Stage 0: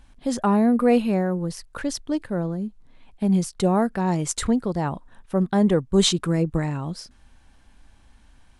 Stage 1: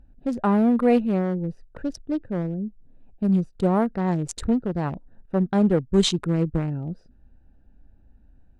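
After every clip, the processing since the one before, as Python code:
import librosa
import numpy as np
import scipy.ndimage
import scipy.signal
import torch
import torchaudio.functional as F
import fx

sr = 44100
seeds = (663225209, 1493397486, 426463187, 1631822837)

y = fx.wiener(x, sr, points=41)
y = fx.high_shelf(y, sr, hz=7500.0, db=-9.5)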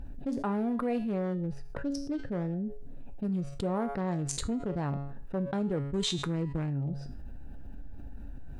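y = fx.comb_fb(x, sr, f0_hz=140.0, decay_s=0.41, harmonics='all', damping=0.0, mix_pct=70)
y = fx.env_flatten(y, sr, amount_pct=70)
y = F.gain(torch.from_numpy(y), -5.0).numpy()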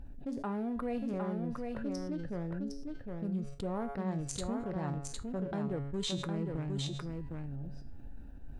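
y = x + 10.0 ** (-4.0 / 20.0) * np.pad(x, (int(759 * sr / 1000.0), 0))[:len(x)]
y = F.gain(torch.from_numpy(y), -5.5).numpy()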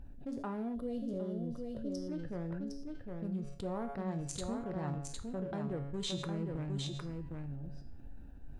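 y = fx.rev_gated(x, sr, seeds[0], gate_ms=220, shape='falling', drr_db=11.5)
y = fx.spec_box(y, sr, start_s=0.75, length_s=1.33, low_hz=690.0, high_hz=2800.0, gain_db=-15)
y = F.gain(torch.from_numpy(y), -2.5).numpy()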